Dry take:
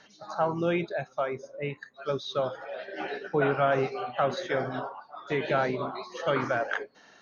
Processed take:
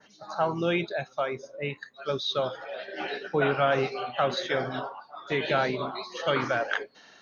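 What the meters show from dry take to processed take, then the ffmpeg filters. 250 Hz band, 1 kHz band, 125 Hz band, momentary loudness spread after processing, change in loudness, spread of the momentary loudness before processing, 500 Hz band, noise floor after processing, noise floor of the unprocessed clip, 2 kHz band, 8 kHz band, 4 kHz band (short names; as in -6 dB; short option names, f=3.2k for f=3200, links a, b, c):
0.0 dB, +0.5 dB, 0.0 dB, 11 LU, +1.0 dB, 11 LU, 0.0 dB, -58 dBFS, -58 dBFS, +2.5 dB, n/a, +7.5 dB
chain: -af "adynamicequalizer=threshold=0.00316:dfrequency=3700:dqfactor=0.94:tfrequency=3700:tqfactor=0.94:attack=5:release=100:ratio=0.375:range=4:mode=boostabove:tftype=bell"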